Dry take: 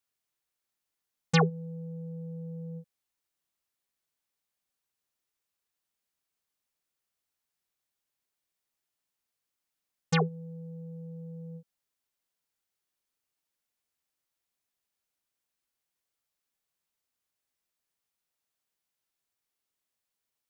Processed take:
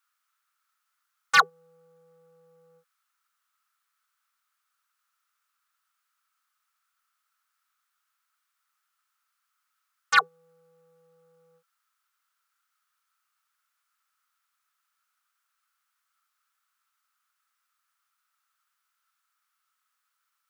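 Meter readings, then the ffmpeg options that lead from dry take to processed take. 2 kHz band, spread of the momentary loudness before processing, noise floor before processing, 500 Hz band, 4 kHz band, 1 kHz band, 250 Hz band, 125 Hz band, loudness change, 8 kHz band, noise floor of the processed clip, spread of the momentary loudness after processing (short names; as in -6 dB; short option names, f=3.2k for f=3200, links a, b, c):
+12.5 dB, 18 LU, under -85 dBFS, -11.0 dB, +7.0 dB, +10.0 dB, under -25 dB, under -25 dB, +10.0 dB, +5.5 dB, -80 dBFS, 3 LU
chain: -af "highpass=f=1.3k:t=q:w=8.4,asoftclip=type=hard:threshold=-15dB,volume=5dB"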